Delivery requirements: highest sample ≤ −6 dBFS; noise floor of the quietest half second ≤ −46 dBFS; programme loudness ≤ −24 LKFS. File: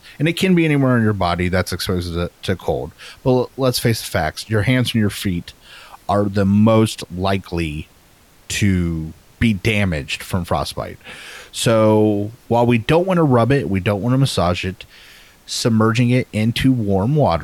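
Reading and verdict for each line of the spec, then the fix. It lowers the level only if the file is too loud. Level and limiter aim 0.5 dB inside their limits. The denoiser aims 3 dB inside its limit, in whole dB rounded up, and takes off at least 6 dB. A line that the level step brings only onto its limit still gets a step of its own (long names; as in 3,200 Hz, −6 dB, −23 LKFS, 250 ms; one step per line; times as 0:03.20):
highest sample −5.0 dBFS: out of spec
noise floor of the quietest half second −50 dBFS: in spec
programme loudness −18.0 LKFS: out of spec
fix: level −6.5 dB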